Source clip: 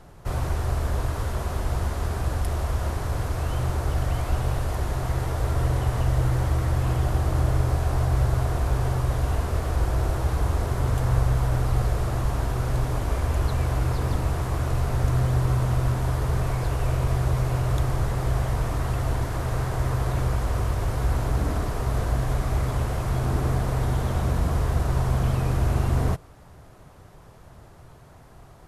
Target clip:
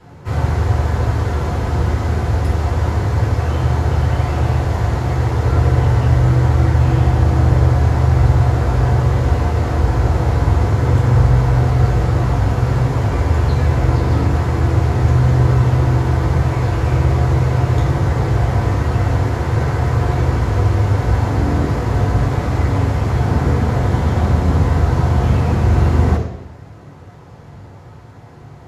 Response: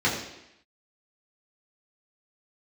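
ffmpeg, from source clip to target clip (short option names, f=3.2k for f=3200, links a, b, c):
-filter_complex "[1:a]atrim=start_sample=2205[a];[0:a][a]afir=irnorm=-1:irlink=0,volume=-6dB"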